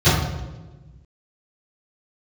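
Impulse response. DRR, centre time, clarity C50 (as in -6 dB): -21.5 dB, 71 ms, 1.0 dB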